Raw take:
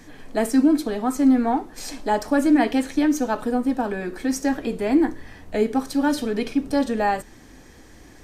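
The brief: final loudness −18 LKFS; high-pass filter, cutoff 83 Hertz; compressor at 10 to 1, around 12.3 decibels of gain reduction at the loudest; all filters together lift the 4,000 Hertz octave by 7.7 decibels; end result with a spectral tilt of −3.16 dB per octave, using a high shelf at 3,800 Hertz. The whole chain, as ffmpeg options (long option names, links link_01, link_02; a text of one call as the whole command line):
ffmpeg -i in.wav -af "highpass=83,highshelf=frequency=3800:gain=8.5,equalizer=frequency=4000:width_type=o:gain=4,acompressor=threshold=-25dB:ratio=10,volume=11.5dB" out.wav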